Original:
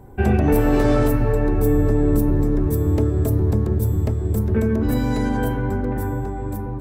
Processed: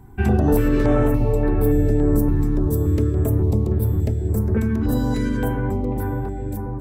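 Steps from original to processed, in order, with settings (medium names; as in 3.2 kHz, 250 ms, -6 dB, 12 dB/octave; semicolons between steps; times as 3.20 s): 0.68–1.14 s: treble shelf 4.7 kHz -9 dB; step-sequenced notch 3.5 Hz 540–6600 Hz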